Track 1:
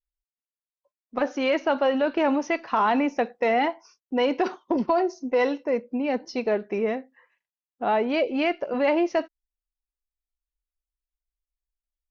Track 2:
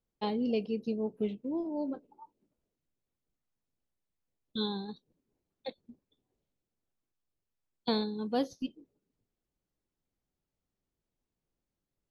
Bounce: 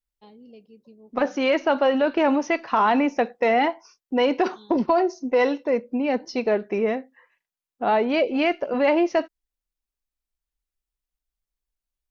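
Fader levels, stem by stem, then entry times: +2.5, −17.0 decibels; 0.00, 0.00 seconds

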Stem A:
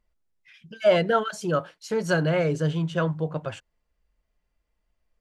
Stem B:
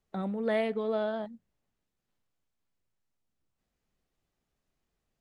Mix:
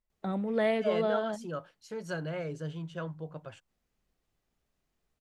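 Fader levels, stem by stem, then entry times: −13.0, +1.0 decibels; 0.00, 0.10 seconds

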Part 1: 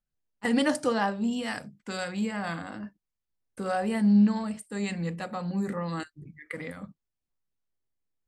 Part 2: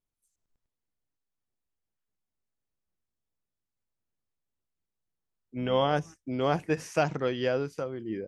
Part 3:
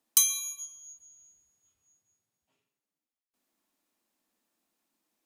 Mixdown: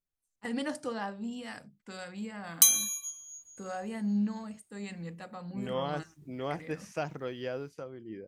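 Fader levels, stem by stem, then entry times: −9.5, −8.5, +1.5 decibels; 0.00, 0.00, 2.45 seconds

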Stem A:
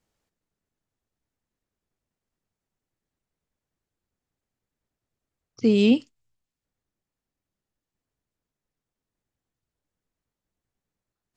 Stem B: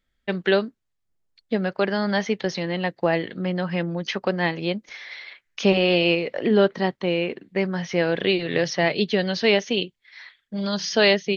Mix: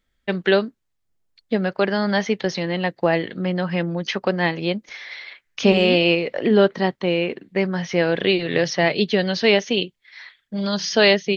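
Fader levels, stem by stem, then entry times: −9.0, +2.5 decibels; 0.00, 0.00 seconds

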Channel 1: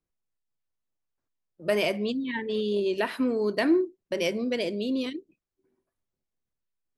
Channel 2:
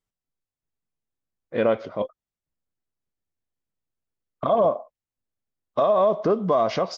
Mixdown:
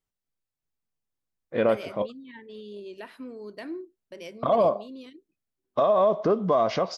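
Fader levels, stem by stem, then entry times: −14.0, −1.5 decibels; 0.00, 0.00 seconds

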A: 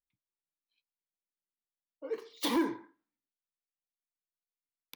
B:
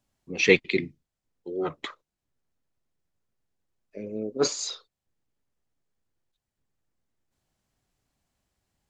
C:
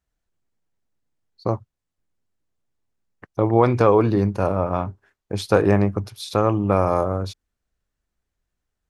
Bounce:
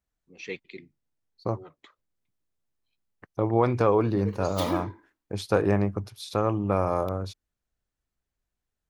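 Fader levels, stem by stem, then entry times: −1.0, −18.0, −6.0 decibels; 2.15, 0.00, 0.00 seconds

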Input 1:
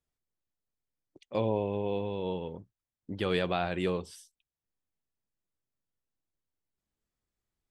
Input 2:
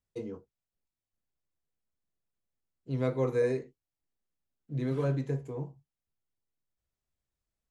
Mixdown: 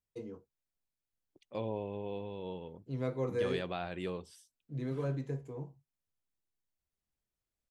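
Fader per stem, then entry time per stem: −8.0, −5.5 decibels; 0.20, 0.00 seconds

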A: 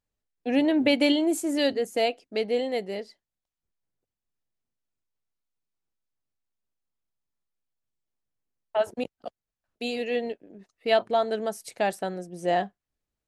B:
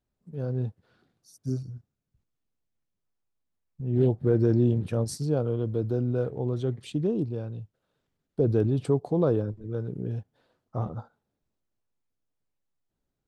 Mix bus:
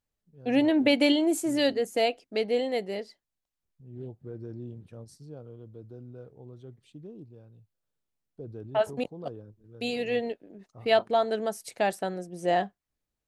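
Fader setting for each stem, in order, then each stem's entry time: −0.5, −18.0 decibels; 0.00, 0.00 seconds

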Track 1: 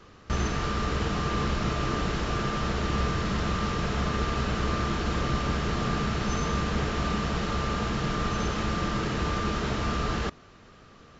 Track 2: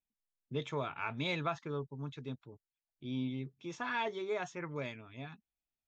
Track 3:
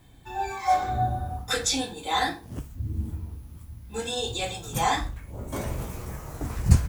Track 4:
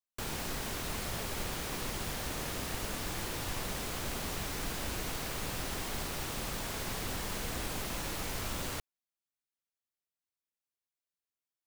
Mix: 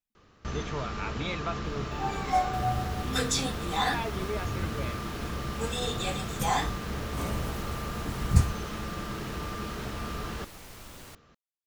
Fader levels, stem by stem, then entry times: −7.5, +0.5, −3.5, −9.5 decibels; 0.15, 0.00, 1.65, 2.35 seconds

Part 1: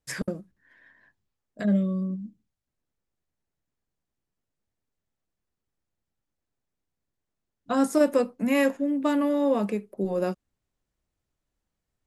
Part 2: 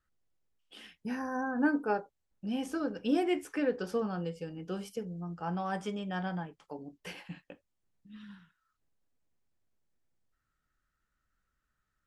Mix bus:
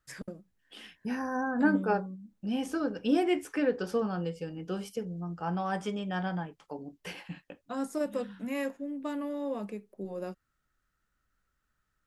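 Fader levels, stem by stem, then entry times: −11.0, +2.5 decibels; 0.00, 0.00 seconds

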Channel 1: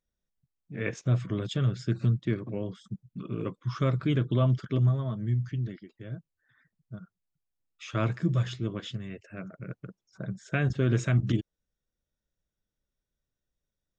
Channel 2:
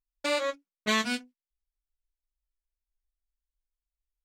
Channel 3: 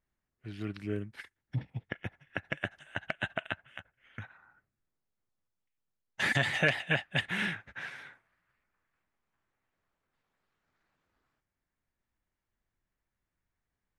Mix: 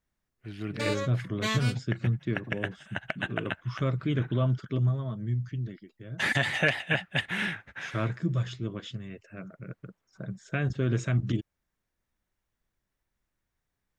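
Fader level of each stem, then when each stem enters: −2.0, −4.0, +2.0 decibels; 0.00, 0.55, 0.00 seconds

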